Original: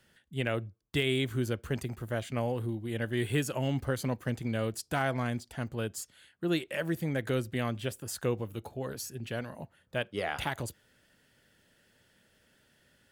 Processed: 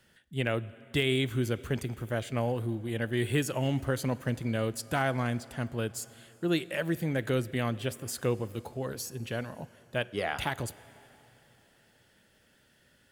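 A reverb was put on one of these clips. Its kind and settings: plate-style reverb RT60 3.6 s, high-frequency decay 0.9×, DRR 18 dB; gain +1.5 dB

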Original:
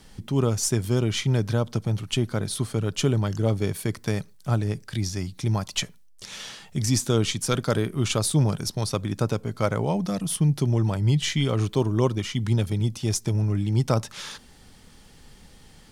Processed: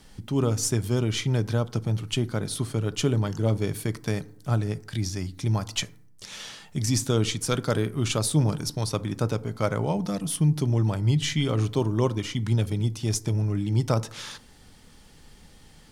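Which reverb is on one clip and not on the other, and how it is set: FDN reverb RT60 0.68 s, low-frequency decay 1.25×, high-frequency decay 0.4×, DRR 15.5 dB; gain -1.5 dB

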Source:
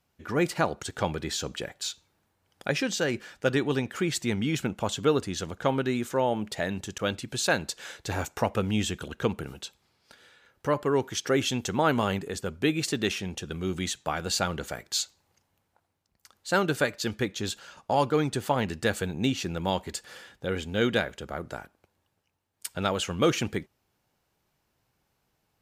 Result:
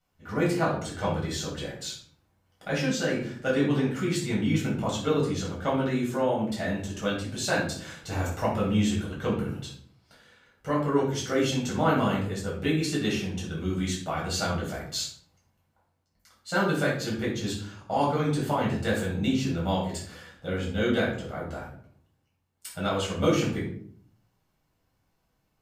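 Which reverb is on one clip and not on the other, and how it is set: shoebox room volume 670 m³, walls furnished, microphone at 7.1 m; gain -10 dB

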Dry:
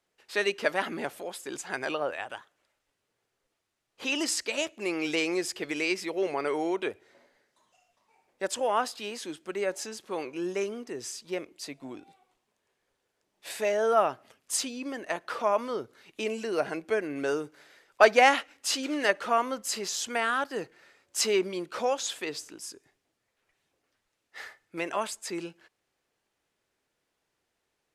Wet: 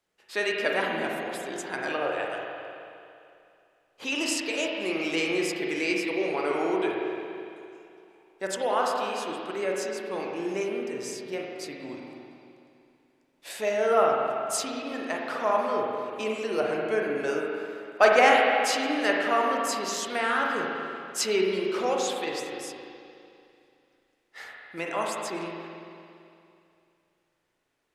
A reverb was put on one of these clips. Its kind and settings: spring tank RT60 2.6 s, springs 37/48 ms, chirp 55 ms, DRR -1.5 dB; gain -1 dB

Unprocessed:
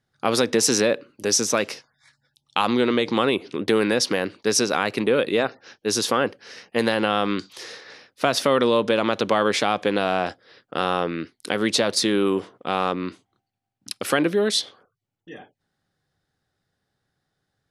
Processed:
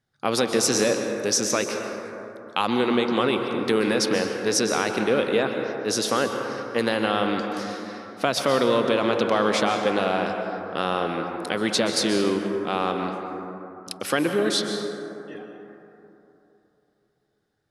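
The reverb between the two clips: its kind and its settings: plate-style reverb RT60 3.2 s, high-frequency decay 0.3×, pre-delay 0.115 s, DRR 4 dB; gain -2.5 dB

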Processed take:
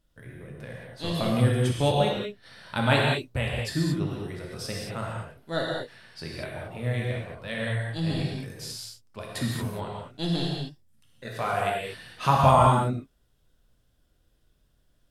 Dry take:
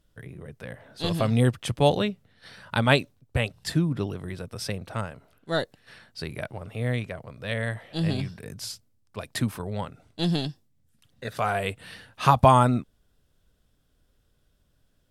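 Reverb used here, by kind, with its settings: non-linear reverb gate 0.25 s flat, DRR -3 dB; gain -5 dB

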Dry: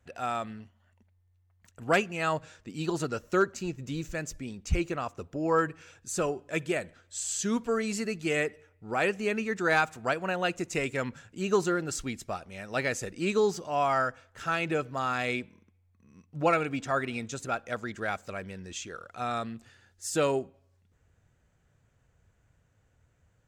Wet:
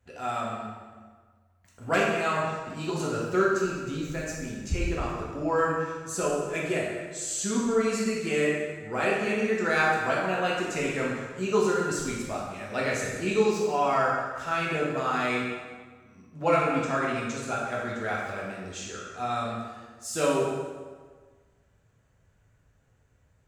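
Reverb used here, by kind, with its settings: plate-style reverb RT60 1.5 s, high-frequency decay 0.75×, DRR -5 dB; gain -3.5 dB

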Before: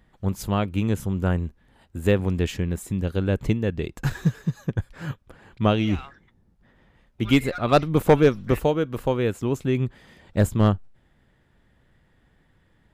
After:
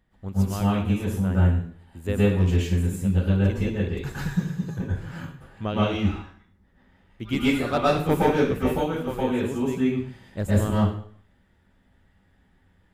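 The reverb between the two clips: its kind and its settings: plate-style reverb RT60 0.53 s, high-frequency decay 0.95×, pre-delay 0.105 s, DRR -8 dB; gain -9.5 dB

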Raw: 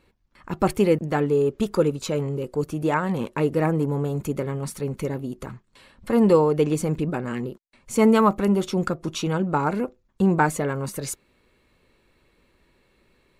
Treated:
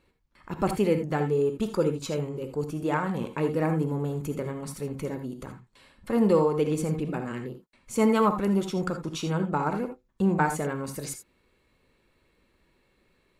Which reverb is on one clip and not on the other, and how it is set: non-linear reverb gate 0.1 s rising, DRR 7.5 dB; gain -5 dB

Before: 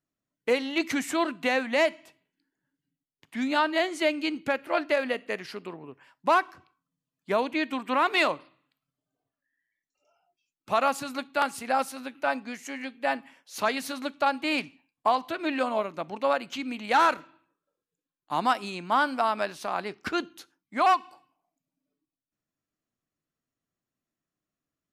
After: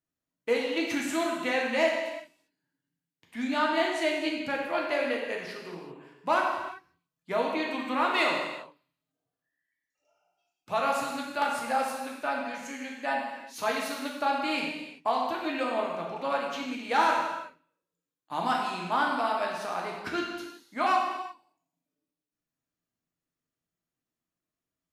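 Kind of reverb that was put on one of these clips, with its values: non-linear reverb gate 0.41 s falling, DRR -2 dB; gain -5.5 dB

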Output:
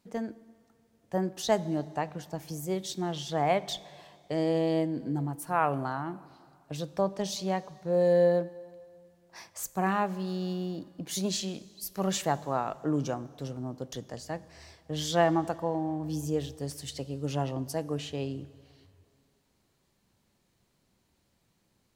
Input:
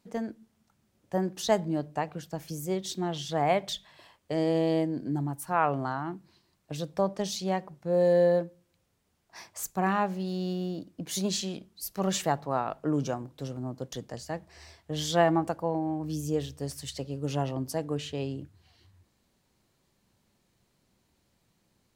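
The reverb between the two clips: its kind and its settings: plate-style reverb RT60 2.4 s, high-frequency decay 0.85×, DRR 18 dB; gain -1 dB

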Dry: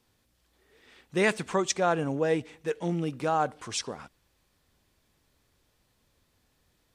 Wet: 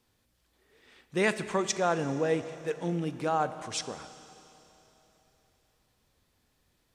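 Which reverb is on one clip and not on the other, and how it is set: Schroeder reverb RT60 3.4 s, combs from 29 ms, DRR 12 dB; gain -2 dB

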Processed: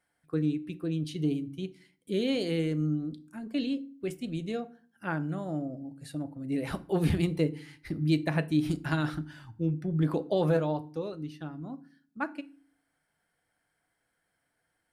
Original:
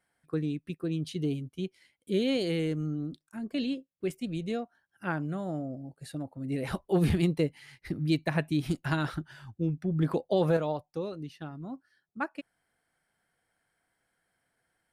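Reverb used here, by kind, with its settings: FDN reverb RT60 0.42 s, low-frequency decay 1.6×, high-frequency decay 0.75×, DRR 11.5 dB; gain -1 dB

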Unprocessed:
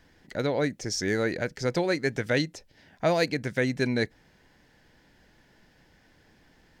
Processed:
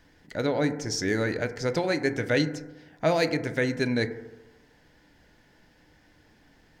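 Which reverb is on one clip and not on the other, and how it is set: FDN reverb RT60 1.1 s, low-frequency decay 0.9×, high-frequency decay 0.25×, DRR 8.5 dB

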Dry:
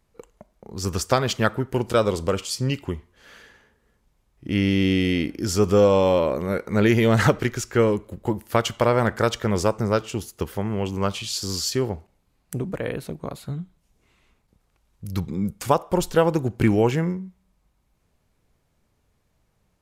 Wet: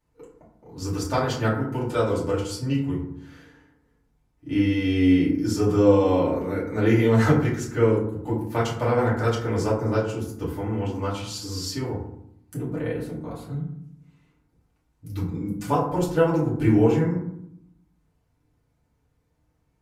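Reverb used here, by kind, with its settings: FDN reverb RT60 0.71 s, low-frequency decay 1.55×, high-frequency decay 0.4×, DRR -9 dB; gain -13 dB

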